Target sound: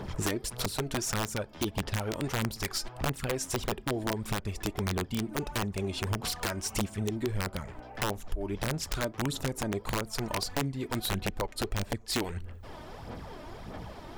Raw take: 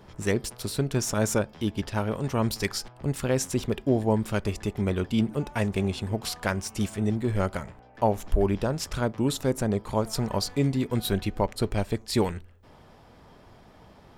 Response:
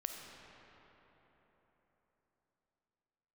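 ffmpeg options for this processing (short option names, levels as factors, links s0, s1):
-af "aphaser=in_gain=1:out_gain=1:delay=3.3:decay=0.51:speed=1.6:type=sinusoidal,acompressor=threshold=0.0178:ratio=10,aeval=exprs='(mod(26.6*val(0)+1,2)-1)/26.6':c=same,volume=2.24"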